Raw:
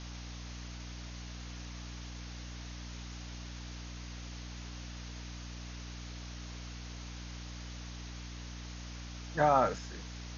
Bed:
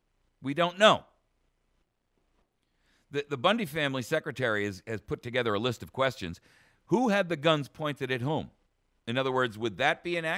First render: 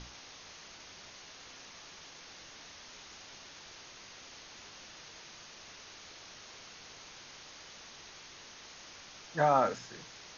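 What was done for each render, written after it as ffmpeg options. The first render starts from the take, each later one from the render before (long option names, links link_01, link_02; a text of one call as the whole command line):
ffmpeg -i in.wav -af "bandreject=frequency=60:width_type=h:width=6,bandreject=frequency=120:width_type=h:width=6,bandreject=frequency=180:width_type=h:width=6,bandreject=frequency=240:width_type=h:width=6,bandreject=frequency=300:width_type=h:width=6" out.wav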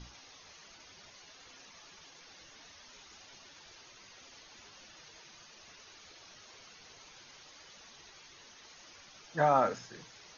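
ffmpeg -i in.wav -af "afftdn=noise_reduction=9:noise_floor=-52" out.wav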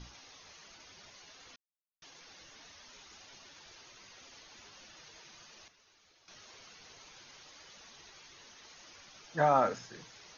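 ffmpeg -i in.wav -filter_complex "[0:a]asplit=5[link_01][link_02][link_03][link_04][link_05];[link_01]atrim=end=1.56,asetpts=PTS-STARTPTS,afade=type=out:start_time=1.556:duration=0.004:curve=hsin[link_06];[link_02]atrim=start=1.56:end=2.02,asetpts=PTS-STARTPTS,volume=0[link_07];[link_03]atrim=start=2.02:end=5.682,asetpts=PTS-STARTPTS,afade=type=in:duration=0.004:curve=hsin[link_08];[link_04]atrim=start=5.678:end=6.282,asetpts=PTS-STARTPTS,volume=-11.5dB[link_09];[link_05]atrim=start=6.278[link_10];[link_06][link_07][link_08]concat=n=3:v=0:a=1[link_11];[link_11][link_09]acrossfade=duration=0.004:curve1=hsin:curve2=hsin[link_12];[link_12][link_10]acrossfade=duration=0.004:curve1=hsin:curve2=hsin" out.wav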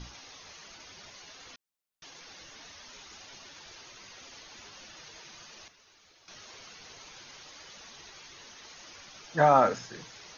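ffmpeg -i in.wav -af "volume=5.5dB" out.wav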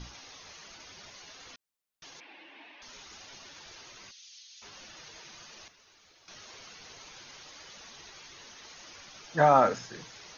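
ffmpeg -i in.wav -filter_complex "[0:a]asettb=1/sr,asplit=3[link_01][link_02][link_03];[link_01]atrim=end=2.204[link_04];[link_02]atrim=start=2.2:end=2.82,asetpts=PTS-STARTPTS,afade=type=in:duration=0.004:curve=qsin,afade=type=out:start_time=0.616:duration=0.004:curve=qsin,highpass=frequency=260:width=0.5412,highpass=frequency=260:width=1.3066,equalizer=frequency=310:width_type=q:width=4:gain=8,equalizer=frequency=470:width_type=q:width=4:gain=-7,equalizer=frequency=880:width_type=q:width=4:gain=4,equalizer=frequency=1300:width_type=q:width=4:gain=-9,equalizer=frequency=2500:width_type=q:width=4:gain=6,lowpass=frequency=3000:width=0.5412,lowpass=frequency=3000:width=1.3066[link_05];[link_03]atrim=start=2.816[link_06];[link_04][link_05]acrossfade=duration=0.004:curve1=hsin:curve2=qsin[link_07];[link_07][link_06]acrossfade=duration=0.004:curve1=qsin:curve2=hsin,asplit=3[link_08][link_09][link_10];[link_08]afade=type=out:start_time=4.1:duration=0.02[link_11];[link_09]asuperpass=centerf=5000:order=4:qfactor=1.1,afade=type=in:start_time=4.1:duration=0.02,afade=type=out:start_time=4.61:duration=0.02[link_12];[link_10]afade=type=in:start_time=4.61:duration=0.02[link_13];[link_11][link_12][link_13]amix=inputs=3:normalize=0" out.wav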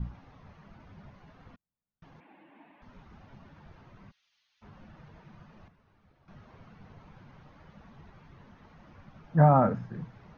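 ffmpeg -i in.wav -af "lowpass=1100,lowshelf=frequency=260:width_type=q:width=1.5:gain=10.5" out.wav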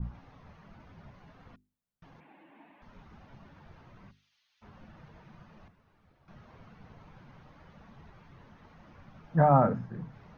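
ffmpeg -i in.wav -af "bandreject=frequency=50:width_type=h:width=6,bandreject=frequency=100:width_type=h:width=6,bandreject=frequency=150:width_type=h:width=6,bandreject=frequency=200:width_type=h:width=6,bandreject=frequency=250:width_type=h:width=6,bandreject=frequency=300:width_type=h:width=6,bandreject=frequency=350:width_type=h:width=6,bandreject=frequency=400:width_type=h:width=6,adynamicequalizer=threshold=0.00158:dfrequency=1800:dqfactor=0.7:tfrequency=1800:tqfactor=0.7:attack=5:release=100:ratio=0.375:range=3:mode=cutabove:tftype=highshelf" out.wav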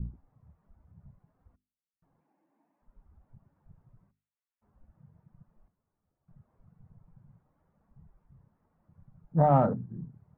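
ffmpeg -i in.wav -af "lowpass=1100,afwtdn=0.0141" out.wav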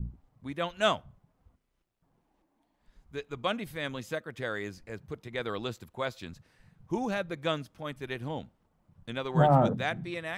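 ffmpeg -i in.wav -i bed.wav -filter_complex "[1:a]volume=-6dB[link_01];[0:a][link_01]amix=inputs=2:normalize=0" out.wav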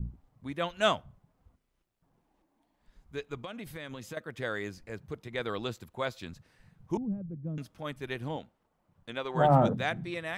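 ffmpeg -i in.wav -filter_complex "[0:a]asettb=1/sr,asplit=3[link_01][link_02][link_03];[link_01]atrim=end=3.434[link_04];[link_02]atrim=start=3.43:end=4.17,asetpts=PTS-STARTPTS,afade=type=in:duration=0.004:curve=qsin,afade=type=out:start_time=0.736:duration=0.004:curve=qsin,acompressor=threshold=-36dB:ratio=16:attack=3.2:release=140:knee=1:detection=peak[link_05];[link_03]atrim=start=4.166[link_06];[link_04][link_05]acrossfade=duration=0.004:curve1=hsin:curve2=qsin[link_07];[link_07][link_06]acrossfade=duration=0.004:curve1=qsin:curve2=hsin,asettb=1/sr,asplit=3[link_08][link_09][link_10];[link_08]atrim=end=6.974[link_11];[link_09]atrim=start=6.97:end=7.58,asetpts=PTS-STARTPTS,afade=type=in:duration=0.004:curve=qsin,afade=type=out:start_time=0.606:duration=0.004:curve=qsin,lowpass=frequency=190:width_type=q:width=1.5[link_12];[link_10]atrim=start=7.576[link_13];[link_11][link_12]acrossfade=duration=0.004:curve1=hsin:curve2=qsin[link_14];[link_14][link_13]acrossfade=duration=0.004:curve1=qsin:curve2=hsin,asettb=1/sr,asplit=3[link_15][link_16][link_17];[link_15]atrim=end=8.364[link_18];[link_16]atrim=start=8.36:end=9.45,asetpts=PTS-STARTPTS,afade=type=in:duration=0.004:curve=qsin,afade=type=out:start_time=1.086:duration=0.004:curve=qsin,bass=frequency=250:gain=-9,treble=frequency=4000:gain=-3[link_19];[link_17]atrim=start=9.446[link_20];[link_18][link_19]acrossfade=duration=0.004:curve1=hsin:curve2=qsin[link_21];[link_21][link_20]acrossfade=duration=0.004:curve1=qsin:curve2=hsin" out.wav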